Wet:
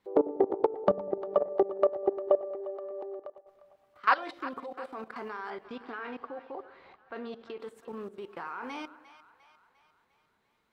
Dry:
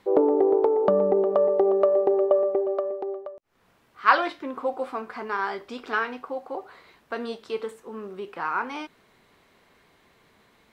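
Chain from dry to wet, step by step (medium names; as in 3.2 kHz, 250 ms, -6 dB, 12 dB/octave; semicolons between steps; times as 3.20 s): 5.50–7.60 s: low-pass 3.2 kHz 12 dB/octave; level held to a coarse grid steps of 19 dB; two-band feedback delay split 650 Hz, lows 98 ms, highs 351 ms, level -15 dB; trim -1 dB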